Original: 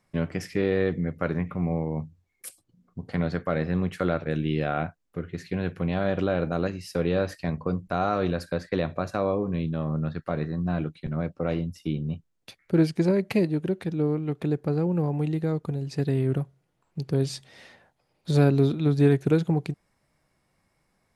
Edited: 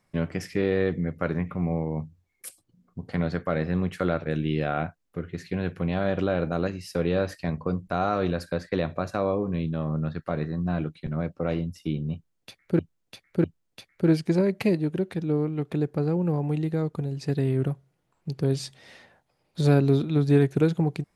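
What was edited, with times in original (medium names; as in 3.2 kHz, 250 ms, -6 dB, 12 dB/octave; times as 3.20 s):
12.14–12.79 s: loop, 3 plays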